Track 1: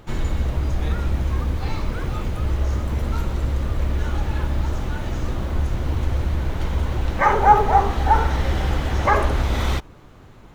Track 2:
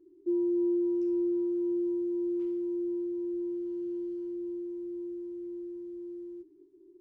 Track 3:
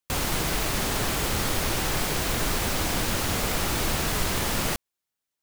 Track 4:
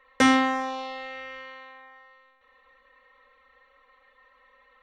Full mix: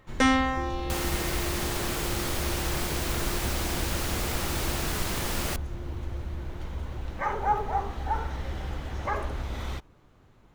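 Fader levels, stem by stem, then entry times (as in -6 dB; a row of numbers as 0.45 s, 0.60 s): -12.5 dB, -10.0 dB, -4.5 dB, -3.0 dB; 0.00 s, 0.30 s, 0.80 s, 0.00 s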